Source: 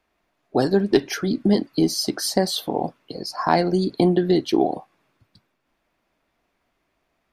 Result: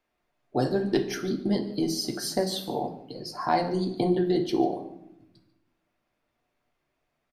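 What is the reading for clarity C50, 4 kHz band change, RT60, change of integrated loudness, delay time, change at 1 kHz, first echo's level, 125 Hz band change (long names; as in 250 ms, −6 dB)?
10.5 dB, −6.5 dB, 0.80 s, −6.0 dB, 145 ms, −4.5 dB, −18.5 dB, −6.0 dB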